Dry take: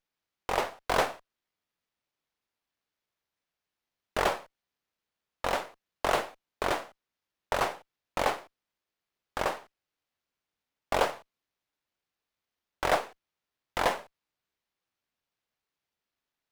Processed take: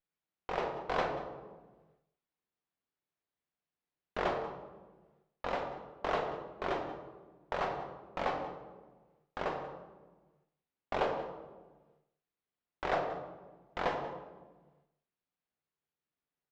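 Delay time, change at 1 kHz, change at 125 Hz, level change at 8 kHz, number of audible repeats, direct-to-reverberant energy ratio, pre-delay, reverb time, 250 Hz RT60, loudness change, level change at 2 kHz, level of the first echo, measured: 185 ms, -5.0 dB, -2.5 dB, under -15 dB, 1, 3.0 dB, 3 ms, 1.3 s, 1.6 s, -6.0 dB, -7.0 dB, -15.5 dB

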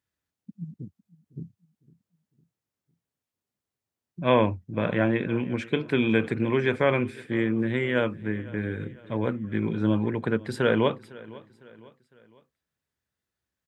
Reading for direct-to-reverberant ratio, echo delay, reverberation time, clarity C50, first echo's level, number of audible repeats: no reverb, 505 ms, no reverb, no reverb, -21.0 dB, 3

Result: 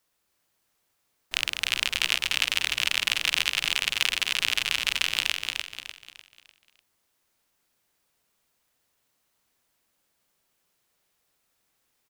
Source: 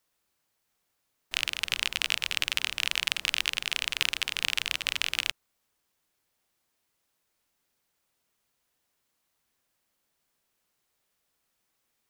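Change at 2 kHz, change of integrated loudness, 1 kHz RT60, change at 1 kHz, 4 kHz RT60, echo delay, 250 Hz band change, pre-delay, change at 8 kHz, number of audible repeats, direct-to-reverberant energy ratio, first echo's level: +3.5 dB, +3.5 dB, no reverb, +3.5 dB, no reverb, 299 ms, +3.5 dB, no reverb, +3.5 dB, 4, no reverb, -4.0 dB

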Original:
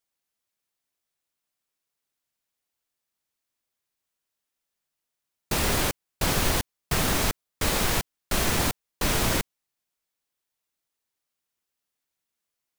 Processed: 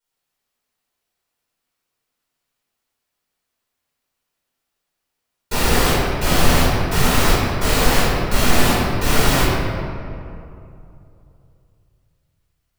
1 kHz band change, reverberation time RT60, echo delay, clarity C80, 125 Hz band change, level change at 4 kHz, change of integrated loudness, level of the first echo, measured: +10.0 dB, 2.6 s, no echo, -1.5 dB, +10.5 dB, +7.0 dB, +7.5 dB, no echo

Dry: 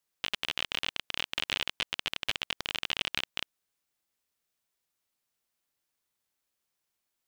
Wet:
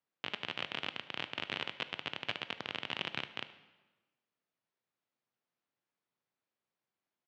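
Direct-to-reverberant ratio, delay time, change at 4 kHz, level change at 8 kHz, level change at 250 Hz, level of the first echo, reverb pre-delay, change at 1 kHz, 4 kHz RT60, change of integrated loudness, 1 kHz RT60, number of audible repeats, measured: 11.5 dB, 75 ms, -7.5 dB, -17.0 dB, +0.5 dB, -21.0 dB, 15 ms, -1.5 dB, 1.0 s, -6.5 dB, 1.2 s, 1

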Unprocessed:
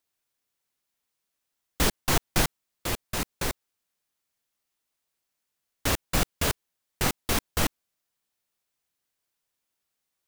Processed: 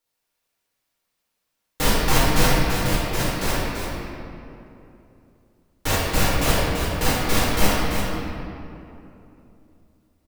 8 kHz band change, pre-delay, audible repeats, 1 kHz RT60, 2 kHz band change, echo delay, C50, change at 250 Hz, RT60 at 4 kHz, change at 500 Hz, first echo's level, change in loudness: +4.0 dB, 6 ms, 1, 2.7 s, +7.5 dB, 337 ms, -3.5 dB, +8.5 dB, 1.6 s, +9.0 dB, -5.5 dB, +6.0 dB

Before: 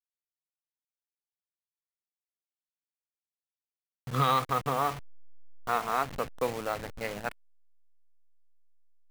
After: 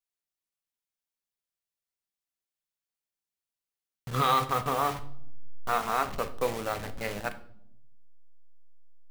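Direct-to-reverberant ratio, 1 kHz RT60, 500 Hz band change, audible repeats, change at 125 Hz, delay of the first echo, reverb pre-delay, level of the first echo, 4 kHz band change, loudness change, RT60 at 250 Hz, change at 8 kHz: 8.5 dB, 0.55 s, +1.0 dB, no echo, -1.0 dB, no echo, 5 ms, no echo, +2.5 dB, +1.0 dB, 1.2 s, +3.0 dB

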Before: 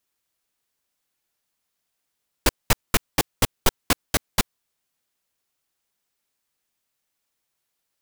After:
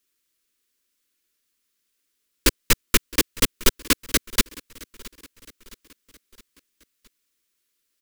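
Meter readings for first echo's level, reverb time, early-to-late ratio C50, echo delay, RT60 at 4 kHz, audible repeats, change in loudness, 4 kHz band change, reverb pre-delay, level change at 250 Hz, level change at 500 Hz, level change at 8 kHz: -21.5 dB, no reverb, no reverb, 666 ms, no reverb, 3, +2.5 dB, +3.5 dB, no reverb, +3.0 dB, +0.5 dB, +4.0 dB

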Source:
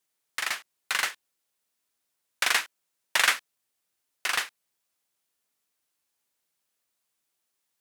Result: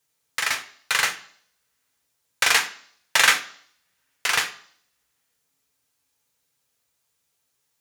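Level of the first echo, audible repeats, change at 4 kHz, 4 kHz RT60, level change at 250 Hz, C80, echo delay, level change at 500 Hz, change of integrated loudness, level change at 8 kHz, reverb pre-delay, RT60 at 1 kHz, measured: no echo, no echo, +6.0 dB, 0.65 s, +6.5 dB, 17.0 dB, no echo, +6.5 dB, +5.5 dB, +7.0 dB, 3 ms, 0.55 s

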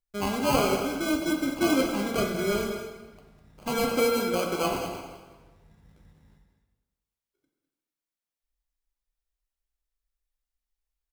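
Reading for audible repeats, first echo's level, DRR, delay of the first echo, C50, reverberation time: 1, -10.5 dB, 1.0 dB, 204 ms, 3.5 dB, 1.3 s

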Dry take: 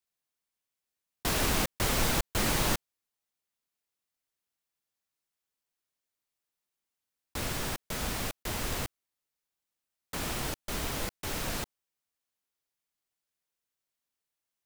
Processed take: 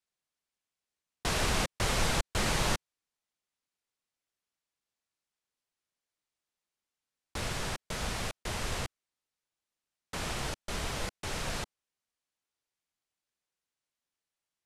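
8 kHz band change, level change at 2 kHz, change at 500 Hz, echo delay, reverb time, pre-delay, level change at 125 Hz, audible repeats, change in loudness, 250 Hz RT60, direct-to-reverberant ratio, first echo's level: -2.5 dB, 0.0 dB, -1.0 dB, no echo, no reverb, no reverb, -0.5 dB, no echo, -2.0 dB, no reverb, no reverb, no echo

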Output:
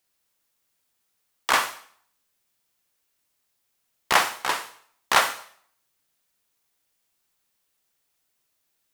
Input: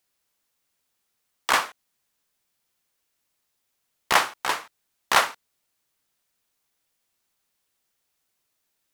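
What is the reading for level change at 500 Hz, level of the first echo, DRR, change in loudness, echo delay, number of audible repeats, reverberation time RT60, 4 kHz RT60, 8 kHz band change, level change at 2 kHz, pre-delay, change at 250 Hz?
0.0 dB, no echo, 10.5 dB, 0.0 dB, no echo, no echo, 0.55 s, 0.55 s, +1.0 dB, +0.5 dB, 32 ms, +0.5 dB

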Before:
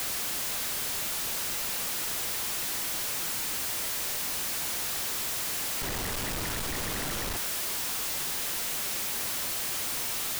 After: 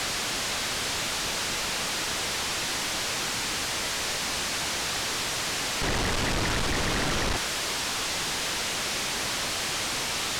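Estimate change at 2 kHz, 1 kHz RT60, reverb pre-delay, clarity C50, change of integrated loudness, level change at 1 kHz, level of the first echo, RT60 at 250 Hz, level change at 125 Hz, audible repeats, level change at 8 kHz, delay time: +7.5 dB, no reverb, no reverb, no reverb, +2.0 dB, +7.5 dB, no echo, no reverb, +7.5 dB, no echo, +1.5 dB, no echo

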